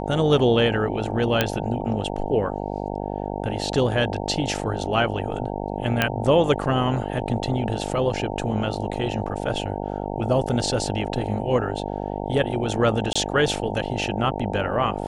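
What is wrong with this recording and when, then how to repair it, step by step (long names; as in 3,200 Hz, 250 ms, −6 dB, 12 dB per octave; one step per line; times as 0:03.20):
mains buzz 50 Hz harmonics 18 −29 dBFS
0:01.41: click −4 dBFS
0:06.02: click −5 dBFS
0:13.13–0:13.15: drop-out 25 ms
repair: click removal
hum removal 50 Hz, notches 18
repair the gap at 0:13.13, 25 ms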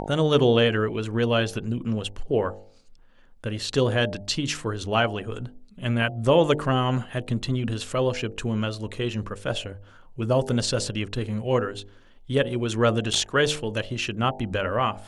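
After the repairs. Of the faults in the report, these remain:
none of them is left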